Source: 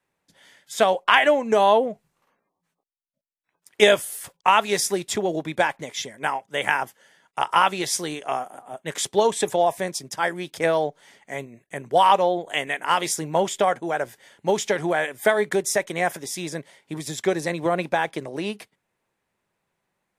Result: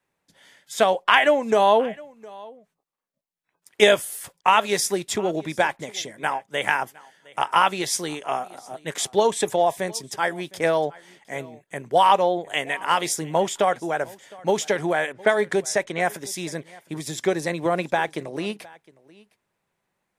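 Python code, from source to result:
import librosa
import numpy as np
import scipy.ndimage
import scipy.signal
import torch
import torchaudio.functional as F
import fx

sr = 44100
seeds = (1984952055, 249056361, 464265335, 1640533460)

y = fx.env_lowpass(x, sr, base_hz=1700.0, full_db=-17.5, at=(15.12, 16.0))
y = y + 10.0 ** (-23.0 / 20.0) * np.pad(y, (int(711 * sr / 1000.0), 0))[:len(y)]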